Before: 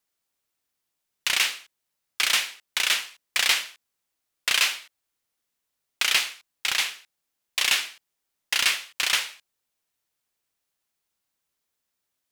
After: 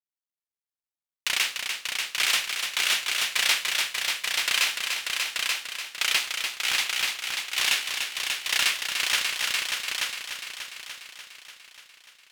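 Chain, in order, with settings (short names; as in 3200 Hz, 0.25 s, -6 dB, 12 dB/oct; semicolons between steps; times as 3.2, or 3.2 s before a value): G.711 law mismatch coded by A; on a send: multi-head echo 0.294 s, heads all three, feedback 47%, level -6 dB; on the sum: gain -2 dB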